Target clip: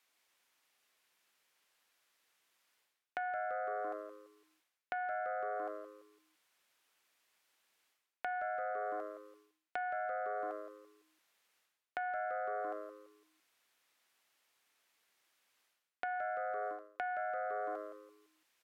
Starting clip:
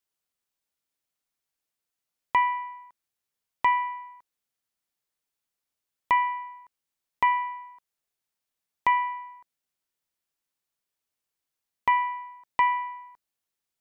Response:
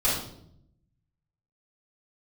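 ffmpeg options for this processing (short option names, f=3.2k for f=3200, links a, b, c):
-filter_complex "[0:a]asplit=5[a][b][c][d][e];[b]adelay=125,afreqshift=-140,volume=-10.5dB[f];[c]adelay=250,afreqshift=-280,volume=-19.4dB[g];[d]adelay=375,afreqshift=-420,volume=-28.2dB[h];[e]adelay=500,afreqshift=-560,volume=-37.1dB[i];[a][f][g][h][i]amix=inputs=5:normalize=0,acrossover=split=140[j][k];[k]acompressor=threshold=-33dB:ratio=4[l];[j][l]amix=inputs=2:normalize=0,aeval=exprs='0.178*(cos(1*acos(clip(val(0)/0.178,-1,1)))-cos(1*PI/2))+0.0355*(cos(2*acos(clip(val(0)/0.178,-1,1)))-cos(2*PI/2))':c=same,bass=f=250:g=-13,treble=f=4k:g=-3,asetrate=32667,aresample=44100,equalizer=f=2.2k:t=o:w=2.6:g=7,areverse,acompressor=threshold=-44dB:ratio=8,areverse,volume=7.5dB"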